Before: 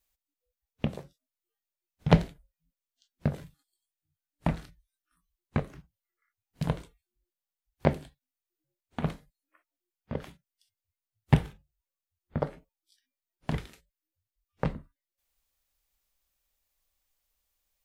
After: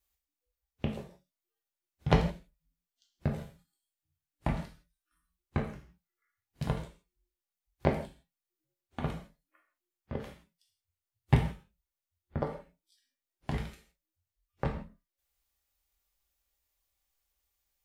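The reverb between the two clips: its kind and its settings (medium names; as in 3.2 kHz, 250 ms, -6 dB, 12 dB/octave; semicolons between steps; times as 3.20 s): gated-style reverb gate 190 ms falling, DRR 1.5 dB; trim -4 dB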